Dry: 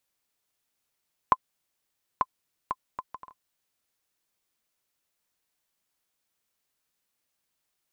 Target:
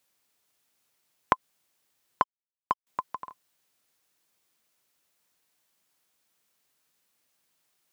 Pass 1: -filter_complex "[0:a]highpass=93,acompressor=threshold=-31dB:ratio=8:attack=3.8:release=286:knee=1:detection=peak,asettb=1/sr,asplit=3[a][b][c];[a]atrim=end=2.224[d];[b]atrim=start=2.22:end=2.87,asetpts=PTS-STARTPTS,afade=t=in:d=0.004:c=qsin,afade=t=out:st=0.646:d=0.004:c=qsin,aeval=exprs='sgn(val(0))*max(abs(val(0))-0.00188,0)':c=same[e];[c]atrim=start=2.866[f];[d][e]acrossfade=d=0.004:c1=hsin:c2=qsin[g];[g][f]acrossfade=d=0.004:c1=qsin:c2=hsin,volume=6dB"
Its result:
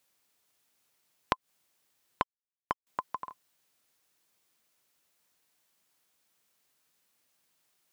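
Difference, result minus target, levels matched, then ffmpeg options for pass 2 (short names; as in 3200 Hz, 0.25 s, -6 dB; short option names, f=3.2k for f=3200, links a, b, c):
compressor: peak gain reduction +8 dB
-filter_complex "[0:a]highpass=93,acompressor=threshold=-22dB:ratio=8:attack=3.8:release=286:knee=1:detection=peak,asettb=1/sr,asplit=3[a][b][c];[a]atrim=end=2.224[d];[b]atrim=start=2.22:end=2.87,asetpts=PTS-STARTPTS,afade=t=in:d=0.004:c=qsin,afade=t=out:st=0.646:d=0.004:c=qsin,aeval=exprs='sgn(val(0))*max(abs(val(0))-0.00188,0)':c=same[e];[c]atrim=start=2.866[f];[d][e]acrossfade=d=0.004:c1=hsin:c2=qsin[g];[g][f]acrossfade=d=0.004:c1=qsin:c2=hsin,volume=6dB"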